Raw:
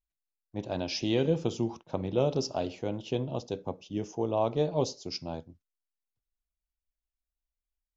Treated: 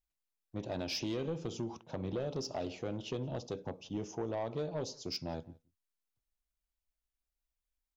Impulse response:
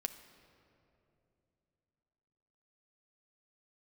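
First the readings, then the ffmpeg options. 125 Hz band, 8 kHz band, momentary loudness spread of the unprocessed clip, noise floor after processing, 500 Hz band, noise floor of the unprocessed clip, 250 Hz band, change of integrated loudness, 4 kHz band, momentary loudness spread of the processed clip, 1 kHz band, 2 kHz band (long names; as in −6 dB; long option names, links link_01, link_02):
−7.0 dB, can't be measured, 10 LU, below −85 dBFS, −8.5 dB, below −85 dBFS, −7.0 dB, −7.5 dB, −4.5 dB, 6 LU, −8.5 dB, −4.5 dB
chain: -filter_complex "[0:a]acompressor=threshold=-31dB:ratio=4,asoftclip=type=tanh:threshold=-29dB,asplit=2[link_01][link_02];[link_02]adelay=174.9,volume=-25dB,highshelf=frequency=4000:gain=-3.94[link_03];[link_01][link_03]amix=inputs=2:normalize=0"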